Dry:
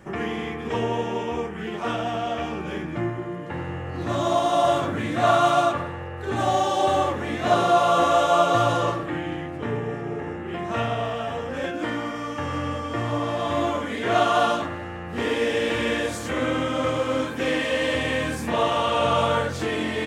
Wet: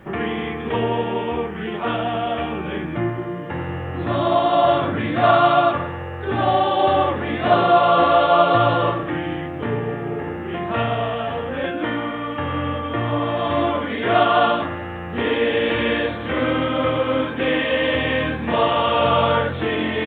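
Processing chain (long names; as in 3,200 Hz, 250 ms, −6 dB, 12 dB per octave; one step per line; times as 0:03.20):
downsampling to 8,000 Hz
bit-depth reduction 12 bits, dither none
level +4 dB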